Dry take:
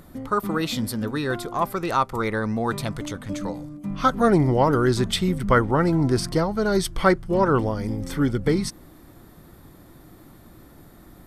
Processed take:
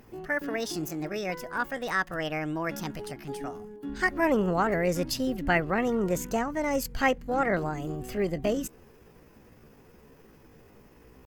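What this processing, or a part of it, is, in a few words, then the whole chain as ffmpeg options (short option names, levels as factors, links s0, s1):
chipmunk voice: -af "asetrate=62367,aresample=44100,atempo=0.707107,volume=0.473"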